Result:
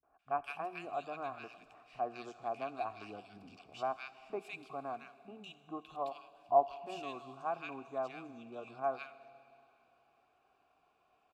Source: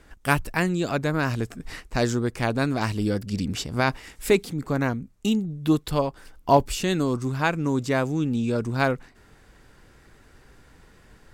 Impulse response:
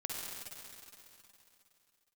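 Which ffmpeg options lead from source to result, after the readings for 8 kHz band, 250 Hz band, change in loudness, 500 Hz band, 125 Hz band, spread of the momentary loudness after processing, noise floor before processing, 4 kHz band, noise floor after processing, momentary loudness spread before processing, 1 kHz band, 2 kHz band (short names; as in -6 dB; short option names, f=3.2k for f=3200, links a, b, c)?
under -25 dB, -26.0 dB, -14.5 dB, -13.0 dB, -33.0 dB, 14 LU, -55 dBFS, -20.5 dB, -74 dBFS, 6 LU, -8.5 dB, -19.5 dB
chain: -filter_complex "[0:a]asplit=3[a][b][c];[a]bandpass=f=730:t=q:w=8,volume=0dB[d];[b]bandpass=f=1.09k:t=q:w=8,volume=-6dB[e];[c]bandpass=f=2.44k:t=q:w=8,volume=-9dB[f];[d][e][f]amix=inputs=3:normalize=0,equalizer=f=520:t=o:w=0.36:g=-8,acrossover=split=180|1600[g][h][i];[h]adelay=30[j];[i]adelay=190[k];[g][j][k]amix=inputs=3:normalize=0,asplit=2[l][m];[1:a]atrim=start_sample=2205,highshelf=f=4k:g=7.5,adelay=11[n];[m][n]afir=irnorm=-1:irlink=0,volume=-17dB[o];[l][o]amix=inputs=2:normalize=0,volume=-1.5dB"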